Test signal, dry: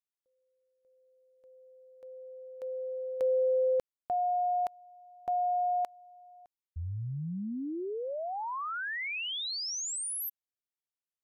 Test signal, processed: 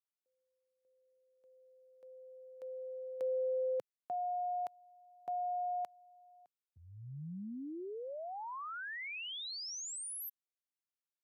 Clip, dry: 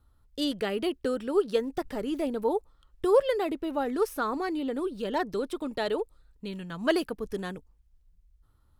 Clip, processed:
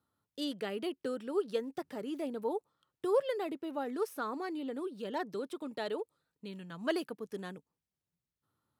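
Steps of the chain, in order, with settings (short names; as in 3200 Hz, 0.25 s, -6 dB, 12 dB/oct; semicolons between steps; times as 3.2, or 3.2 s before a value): HPF 130 Hz 24 dB/oct; gain -7.5 dB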